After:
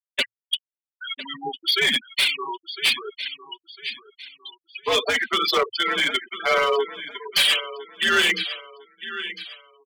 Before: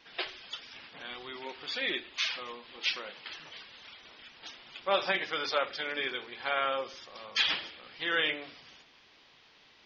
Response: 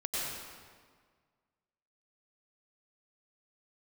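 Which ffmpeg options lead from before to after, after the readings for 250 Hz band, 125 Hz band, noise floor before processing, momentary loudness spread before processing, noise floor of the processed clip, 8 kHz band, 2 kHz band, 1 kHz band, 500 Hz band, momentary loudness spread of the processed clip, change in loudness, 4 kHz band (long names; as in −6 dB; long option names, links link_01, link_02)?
+9.0 dB, +9.0 dB, −61 dBFS, 19 LU, below −85 dBFS, can't be measured, +10.0 dB, +9.0 dB, +9.5 dB, 19 LU, +10.5 dB, +12.0 dB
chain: -filter_complex "[0:a]bandreject=frequency=60:width_type=h:width=6,bandreject=frequency=120:width_type=h:width=6,bandreject=frequency=180:width_type=h:width=6,bandreject=frequency=240:width_type=h:width=6,bandreject=frequency=300:width_type=h:width=6,bandreject=frequency=360:width_type=h:width=6,bandreject=frequency=420:width_type=h:width=6,bandreject=frequency=480:width_type=h:width=6,asplit=2[link_01][link_02];[link_02]acompressor=threshold=-40dB:ratio=8,volume=2.5dB[link_03];[link_01][link_03]amix=inputs=2:normalize=0,afftfilt=real='re*gte(hypot(re,im),0.0631)':imag='im*gte(hypot(re,im),0.0631)':win_size=1024:overlap=0.75,highpass=310,equalizer=frequency=4500:width=0.41:gain=8.5,acontrast=34,aecho=1:1:1004|2008|3012:0.188|0.064|0.0218,afreqshift=-110,volume=16dB,asoftclip=hard,volume=-16dB,adynamicequalizer=threshold=0.00794:dfrequency=510:dqfactor=1.8:tfrequency=510:tqfactor=1.8:attack=5:release=100:ratio=0.375:range=2.5:mode=boostabove:tftype=bell,aecho=1:1:5.2:0.39"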